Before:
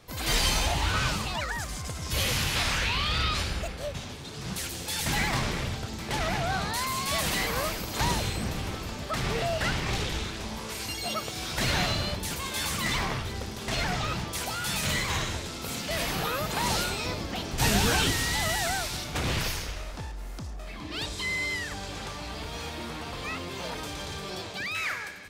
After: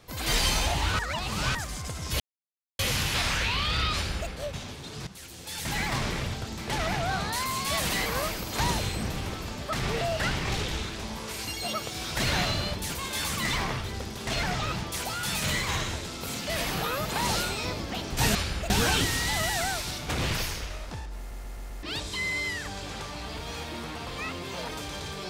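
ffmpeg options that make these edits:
-filter_complex "[0:a]asplit=12[a][b][c][d][e][f][g][h][i][j][k][l];[a]atrim=end=0.992[m];[b]atrim=start=0.988:end=1.552,asetpts=PTS-STARTPTS,areverse[n];[c]atrim=start=1.548:end=2.2,asetpts=PTS-STARTPTS,afade=t=out:st=0.648:d=0.004:c=hsin,apad=pad_dur=0.59[o];[d]atrim=start=2.2:end=4.48,asetpts=PTS-STARTPTS,afade=t=in:d=0.004:c=hsin,afade=t=out:st=2.276:d=0.004:c=hsin:silence=0.177828[p];[e]atrim=start=4.48:end=17.762,asetpts=PTS-STARTPTS,afade=t=in:d=1.04:silence=0.177828[q];[f]atrim=start=3.348:end=3.702[r];[g]atrim=start=17.758:end=20.372[s];[h]atrim=start=20.238:end=20.372[t];[i]atrim=start=20.238:end=20.372[u];[j]atrim=start=20.238:end=20.372[v];[k]atrim=start=20.238:end=20.372[w];[l]atrim=start=20.888[x];[m][n]acrossfade=d=0.004:c1=hsin:c2=hsin[y];[o][p][q]concat=n=3:v=0:a=1[z];[y][z]acrossfade=d=0.004:c1=hsin:c2=hsin[aa];[aa][r]acrossfade=d=0.004:c1=hsin:c2=hsin[ab];[ab][s]acrossfade=d=0.004:c1=hsin:c2=hsin[ac];[ac][t]acrossfade=d=0.004:c1=hsin:c2=hsin[ad];[ad][u]acrossfade=d=0.004:c1=hsin:c2=hsin[ae];[ae][v]acrossfade=d=0.004:c1=hsin:c2=hsin[af];[af][w]acrossfade=d=0.004:c1=hsin:c2=hsin[ag];[ag][x]acrossfade=d=0.004:c1=hsin:c2=hsin"

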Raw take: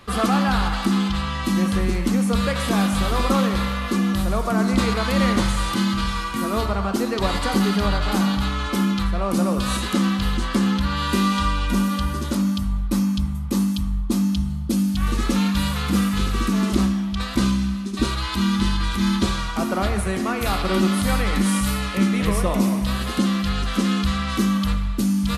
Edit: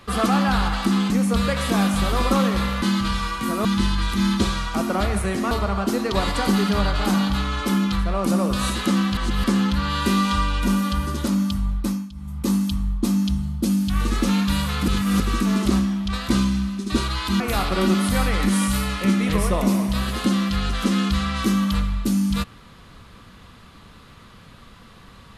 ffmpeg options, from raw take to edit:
-filter_complex "[0:a]asplit=12[a][b][c][d][e][f][g][h][i][j][k][l];[a]atrim=end=1.102[m];[b]atrim=start=2.088:end=3.812[n];[c]atrim=start=5.748:end=6.582[o];[d]atrim=start=18.468:end=20.332[p];[e]atrim=start=6.578:end=10.242[q];[f]atrim=start=10.238:end=10.512,asetpts=PTS-STARTPTS,areverse[r];[g]atrim=start=10.508:end=13.18,asetpts=PTS-STARTPTS,afade=t=out:st=2.332:d=0.34:silence=0.125893[s];[h]atrim=start=13.18:end=13.2,asetpts=PTS-STARTPTS,volume=-18dB[t];[i]atrim=start=13.2:end=15.952,asetpts=PTS-STARTPTS,afade=t=in:d=0.34:silence=0.125893[u];[j]atrim=start=15.948:end=16.272,asetpts=PTS-STARTPTS,areverse[v];[k]atrim=start=16.268:end=18.472[w];[l]atrim=start=20.328[x];[m][n]acrossfade=d=0.004:c1=hsin:c2=hsin[y];[y][o]acrossfade=d=0.004:c1=hsin:c2=hsin[z];[z][p]acrossfade=d=0.004:c1=hsin:c2=hsin[aa];[aa][q]acrossfade=d=0.004:c1=hsin:c2=hsin[ab];[ab][r]acrossfade=d=0.004:c1=hsin:c2=hsin[ac];[s][t][u]concat=n=3:v=0:a=1[ad];[ac][ad]acrossfade=d=0.004:c1=hsin:c2=hsin[ae];[ae][v]acrossfade=d=0.004:c1=hsin:c2=hsin[af];[af][w]acrossfade=d=0.004:c1=hsin:c2=hsin[ag];[ag][x]acrossfade=d=0.004:c1=hsin:c2=hsin"

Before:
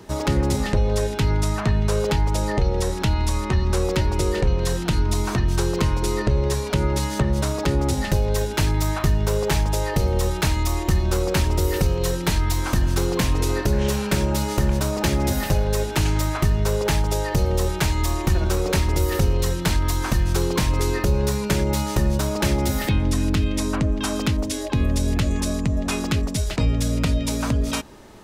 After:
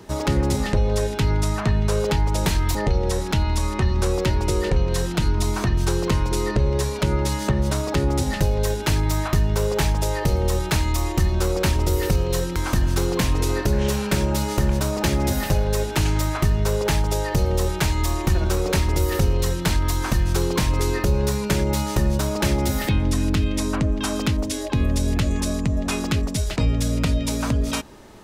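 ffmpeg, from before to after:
-filter_complex "[0:a]asplit=4[a][b][c][d];[a]atrim=end=2.462[e];[b]atrim=start=12.268:end=12.562[f];[c]atrim=start=2.458:end=12.272[g];[d]atrim=start=12.558[h];[e][f]acrossfade=d=0.004:c1=hsin:c2=hsin[i];[i][g]acrossfade=d=0.004:c1=hsin:c2=hsin[j];[j][h]acrossfade=d=0.004:c1=hsin:c2=hsin"

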